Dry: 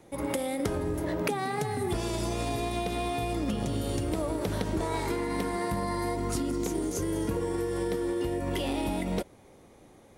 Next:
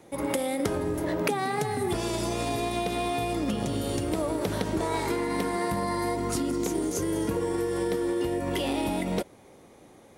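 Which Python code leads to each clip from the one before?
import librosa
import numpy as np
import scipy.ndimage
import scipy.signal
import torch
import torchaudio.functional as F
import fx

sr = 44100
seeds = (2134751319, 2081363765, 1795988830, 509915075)

y = fx.low_shelf(x, sr, hz=72.0, db=-11.5)
y = y * 10.0 ** (3.0 / 20.0)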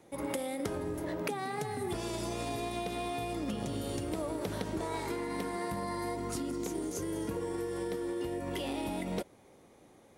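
y = fx.rider(x, sr, range_db=10, speed_s=0.5)
y = y * 10.0 ** (-7.5 / 20.0)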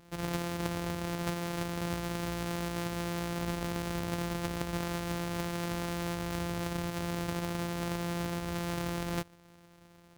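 y = np.r_[np.sort(x[:len(x) // 256 * 256].reshape(-1, 256), axis=1).ravel(), x[len(x) // 256 * 256:]]
y = y * 10.0 ** (1.0 / 20.0)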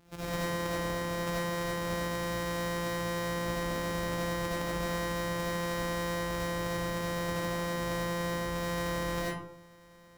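y = fx.rev_freeverb(x, sr, rt60_s=0.63, hf_ratio=0.5, predelay_ms=40, drr_db=-7.0)
y = y * 10.0 ** (-5.0 / 20.0)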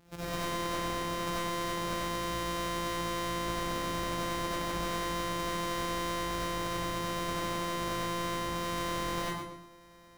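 y = np.minimum(x, 2.0 * 10.0 ** (-30.5 / 20.0) - x)
y = fx.echo_feedback(y, sr, ms=119, feedback_pct=27, wet_db=-8.0)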